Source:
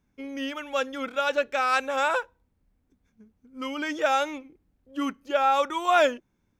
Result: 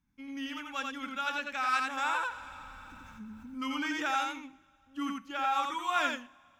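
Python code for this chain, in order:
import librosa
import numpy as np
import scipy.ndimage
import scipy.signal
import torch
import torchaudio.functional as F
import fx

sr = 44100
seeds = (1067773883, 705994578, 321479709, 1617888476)

p1 = fx.band_shelf(x, sr, hz=500.0, db=-14.5, octaves=1.1)
p2 = p1 + fx.echo_single(p1, sr, ms=87, db=-3.5, dry=0)
p3 = fx.rev_double_slope(p2, sr, seeds[0], early_s=0.5, late_s=3.2, knee_db=-18, drr_db=16.0)
p4 = fx.env_flatten(p3, sr, amount_pct=50, at=(2.09, 4.11))
y = p4 * librosa.db_to_amplitude(-6.5)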